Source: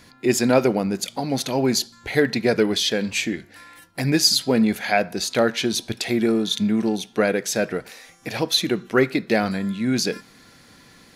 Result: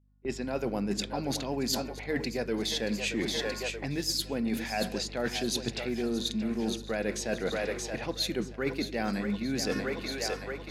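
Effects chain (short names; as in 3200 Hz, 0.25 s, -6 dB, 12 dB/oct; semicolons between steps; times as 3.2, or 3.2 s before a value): opening faded in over 0.78 s; low-pass opened by the level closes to 1000 Hz, open at -18 dBFS; on a send: split-band echo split 360 Hz, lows 0.11 s, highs 0.654 s, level -12 dB; on the sum: speed mistake 24 fps film run at 25 fps; HPF 120 Hz 24 dB/oct; reverse; compressor 20:1, threshold -32 dBFS, peak gain reduction 21 dB; reverse; hum 50 Hz, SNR 13 dB; gate with hold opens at -36 dBFS; gain +4.5 dB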